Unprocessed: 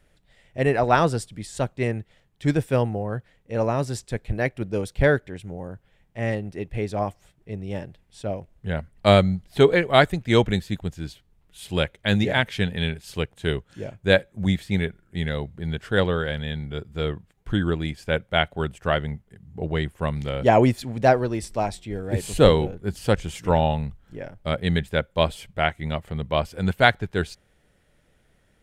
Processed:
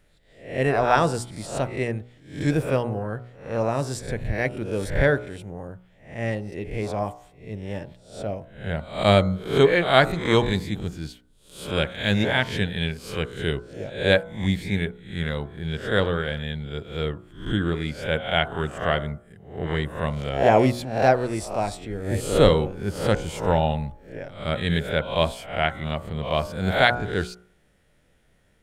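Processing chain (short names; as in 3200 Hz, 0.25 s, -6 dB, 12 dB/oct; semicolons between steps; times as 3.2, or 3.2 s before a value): spectral swells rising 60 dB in 0.47 s; de-hum 60.5 Hz, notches 25; gain -1.5 dB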